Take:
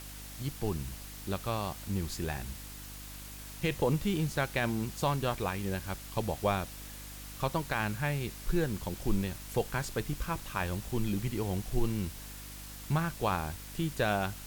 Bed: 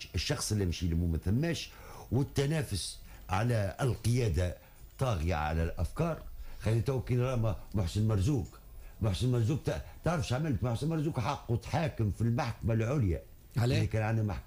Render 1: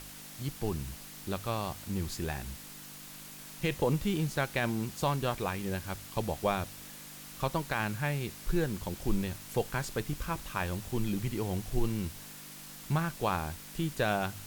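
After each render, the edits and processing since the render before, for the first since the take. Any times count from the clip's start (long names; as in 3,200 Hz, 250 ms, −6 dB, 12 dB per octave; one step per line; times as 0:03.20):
hum removal 50 Hz, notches 2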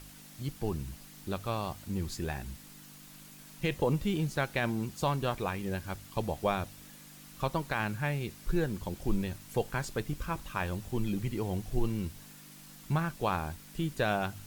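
broadband denoise 6 dB, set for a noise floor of −48 dBFS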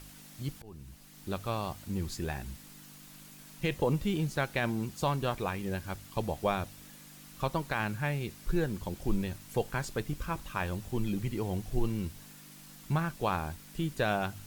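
0:00.62–0:01.34: fade in, from −23.5 dB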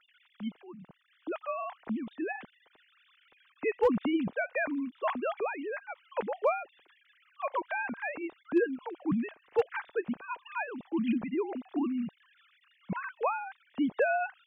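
three sine waves on the formant tracks
hard clipping −17.5 dBFS, distortion −29 dB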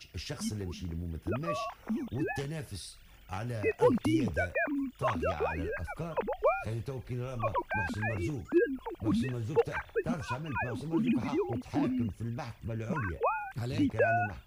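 mix in bed −7 dB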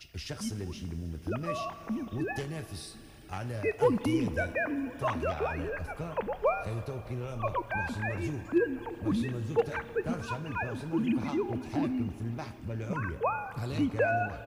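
single-tap delay 1,044 ms −23 dB
four-comb reverb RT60 3.9 s, combs from 27 ms, DRR 13 dB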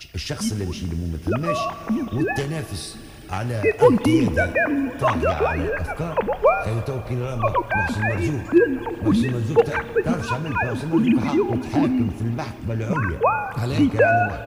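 level +11 dB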